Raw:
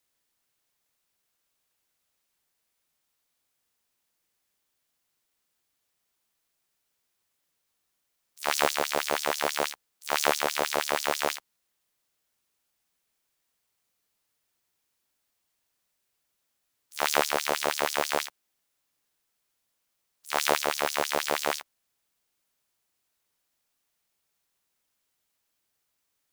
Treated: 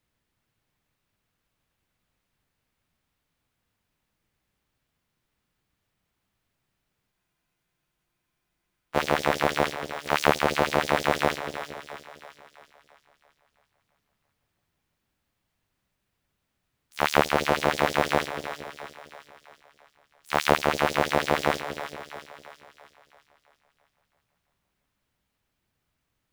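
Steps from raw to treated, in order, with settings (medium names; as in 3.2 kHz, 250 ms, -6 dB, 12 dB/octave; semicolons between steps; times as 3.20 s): tone controls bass +13 dB, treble -11 dB; two-band feedback delay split 560 Hz, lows 228 ms, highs 334 ms, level -10 dB; spectral freeze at 7.12 s, 1.83 s; trim +3.5 dB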